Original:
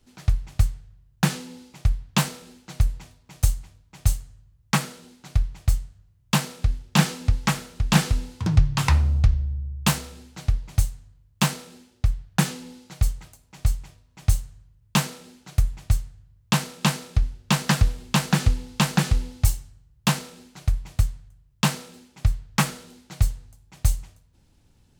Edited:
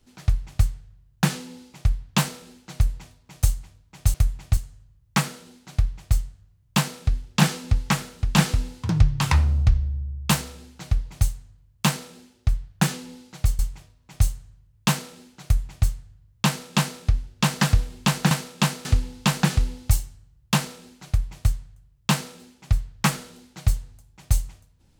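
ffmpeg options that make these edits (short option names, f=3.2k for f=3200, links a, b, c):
-filter_complex "[0:a]asplit=6[a][b][c][d][e][f];[a]atrim=end=4.142[g];[b]atrim=start=15.518:end=15.952[h];[c]atrim=start=4.138:end=13.162[i];[d]atrim=start=13.668:end=18.392[j];[e]atrim=start=16.538:end=17.082[k];[f]atrim=start=18.388[l];[g][h]acrossfade=d=0.004:c1=hsin:c2=hsin[m];[m][i]acrossfade=d=0.004:c1=hsin:c2=hsin[n];[n][j]acrossfade=d=0.004:c1=hsin:c2=hsin[o];[o][k]acrossfade=d=0.004:c1=hsin:c2=hsin[p];[p][l]acrossfade=d=0.004:c1=hsin:c2=hsin"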